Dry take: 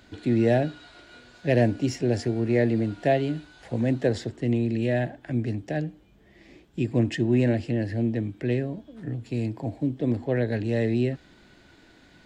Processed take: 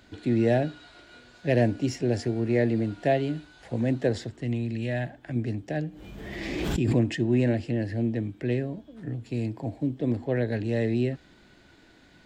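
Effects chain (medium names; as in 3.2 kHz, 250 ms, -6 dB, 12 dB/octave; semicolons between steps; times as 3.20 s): 4.14–5.36 s: dynamic bell 390 Hz, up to -7 dB, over -38 dBFS, Q 0.86; 5.86–7.16 s: swell ahead of each attack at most 26 dB/s; trim -1.5 dB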